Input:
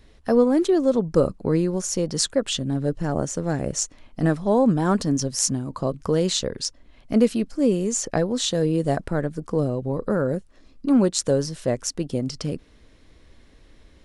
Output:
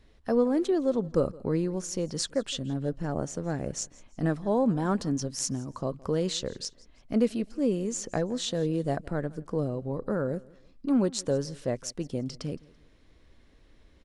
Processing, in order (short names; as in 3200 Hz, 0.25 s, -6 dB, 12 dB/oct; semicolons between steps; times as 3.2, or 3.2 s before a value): high shelf 8000 Hz -6.5 dB; feedback echo 0.167 s, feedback 35%, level -23 dB; gain -6.5 dB